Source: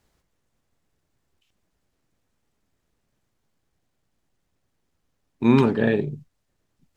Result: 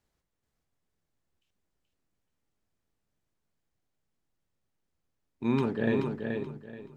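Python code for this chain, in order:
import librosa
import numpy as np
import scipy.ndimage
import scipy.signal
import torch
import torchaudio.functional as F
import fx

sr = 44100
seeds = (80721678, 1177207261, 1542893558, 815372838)

y = fx.rider(x, sr, range_db=10, speed_s=0.5)
y = fx.echo_feedback(y, sr, ms=429, feedback_pct=26, wet_db=-5)
y = y * 10.0 ** (-8.5 / 20.0)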